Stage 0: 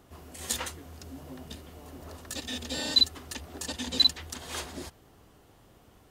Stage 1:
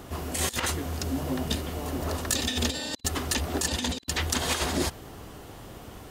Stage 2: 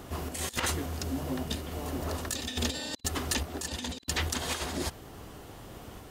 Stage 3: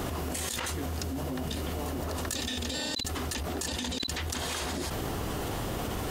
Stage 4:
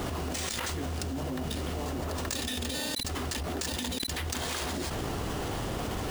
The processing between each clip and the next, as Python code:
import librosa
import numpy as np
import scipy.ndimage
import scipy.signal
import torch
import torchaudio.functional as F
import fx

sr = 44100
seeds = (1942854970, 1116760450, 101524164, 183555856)

y1 = fx.over_compress(x, sr, threshold_db=-38.0, ratio=-0.5)
y1 = y1 * librosa.db_to_amplitude(9.0)
y2 = fx.tremolo_random(y1, sr, seeds[0], hz=3.5, depth_pct=55)
y2 = y2 * librosa.db_to_amplitude(-1.5)
y3 = fx.env_flatten(y2, sr, amount_pct=100)
y3 = y3 * librosa.db_to_amplitude(-6.0)
y4 = fx.sample_hold(y3, sr, seeds[1], rate_hz=14000.0, jitter_pct=0)